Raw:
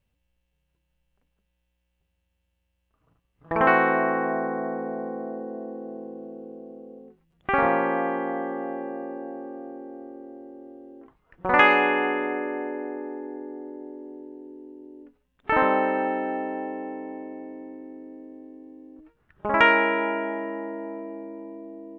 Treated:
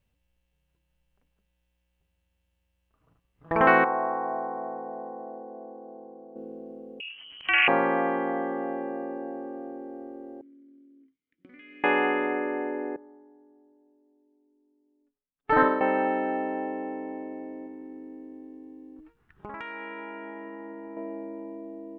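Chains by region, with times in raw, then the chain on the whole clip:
3.84–6.36 s: band-pass filter 900 Hz, Q 2.5 + tilt EQ -3.5 dB/octave
7.00–7.68 s: frequency inversion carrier 3.1 kHz + upward compressor, threshold -28 dBFS
10.41–11.84 s: companding laws mixed up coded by A + compression 16:1, threshold -30 dBFS + vowel filter i
12.96–15.81 s: comb 7 ms, depth 89% + upward expansion 2.5:1, over -36 dBFS
17.66–20.97 s: peaking EQ 590 Hz -13.5 dB 0.23 oct + compression 5:1, threshold -37 dBFS
whole clip: none

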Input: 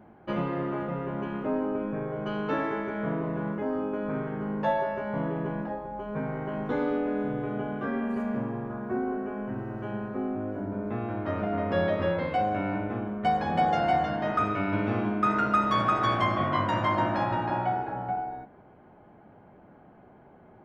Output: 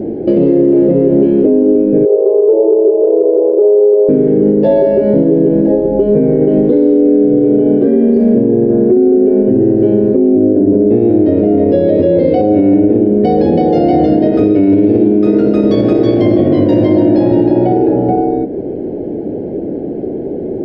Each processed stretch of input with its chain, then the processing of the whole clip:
2.05–4.09 s: brick-wall FIR band-pass 340–1100 Hz + delay 144 ms -15.5 dB
whole clip: FFT filter 130 Hz 0 dB, 210 Hz +3 dB, 300 Hz +13 dB, 470 Hz +12 dB, 1.2 kHz -29 dB, 1.7 kHz -16 dB, 3.4 kHz -10 dB, 4.8 kHz -2 dB, 6.8 kHz -17 dB, 10 kHz -14 dB; compression 2:1, threshold -40 dBFS; loudness maximiser +28 dB; trim -1 dB

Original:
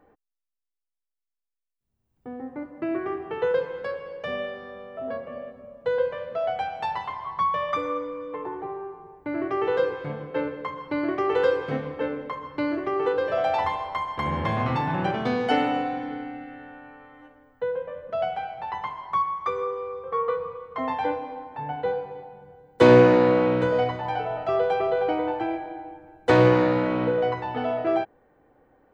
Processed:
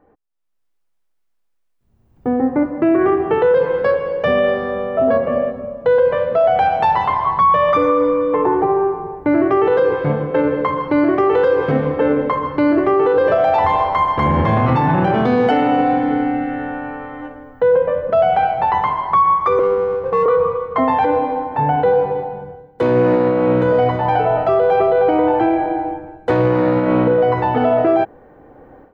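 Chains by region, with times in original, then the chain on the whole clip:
19.59–20.26 s: jump at every zero crossing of -36.5 dBFS + steep low-pass 1.1 kHz 72 dB/octave + power-law waveshaper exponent 1.4
whole clip: treble shelf 2.2 kHz -12 dB; level rider gain up to 16 dB; loudness maximiser +10 dB; trim -6 dB

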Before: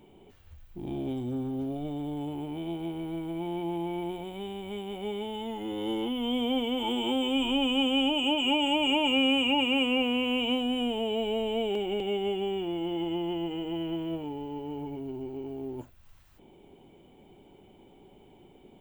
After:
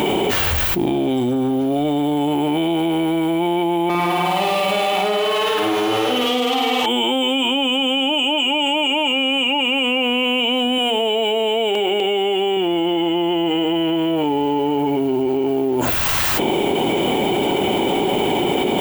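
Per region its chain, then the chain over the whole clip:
3.89–6.86 s: comb filter that takes the minimum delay 6.6 ms + flutter echo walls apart 9 m, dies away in 1.3 s
10.78–12.57 s: tone controls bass -7 dB, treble +1 dB + hum notches 60/120/180/240/300/360/420/480/540 Hz
whole clip: high-pass 460 Hz 6 dB/octave; level flattener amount 100%; trim +7 dB

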